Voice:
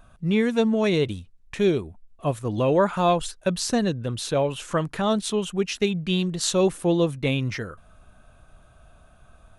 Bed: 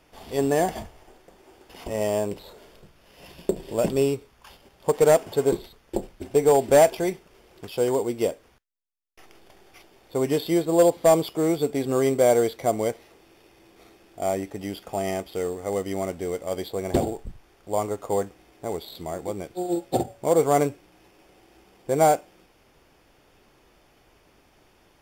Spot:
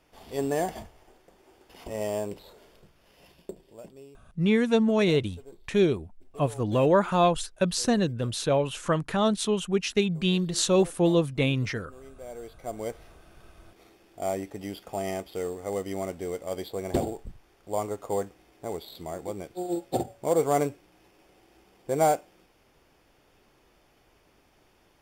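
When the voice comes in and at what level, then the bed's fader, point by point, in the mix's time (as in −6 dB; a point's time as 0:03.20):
4.15 s, −1.0 dB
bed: 0:03.09 −5.5 dB
0:04.01 −27 dB
0:12.15 −27 dB
0:13.02 −4 dB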